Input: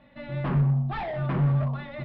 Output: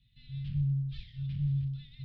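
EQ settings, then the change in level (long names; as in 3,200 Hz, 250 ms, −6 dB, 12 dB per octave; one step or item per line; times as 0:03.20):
Chebyshev band-stop filter 120–3,500 Hz, order 3
−2.0 dB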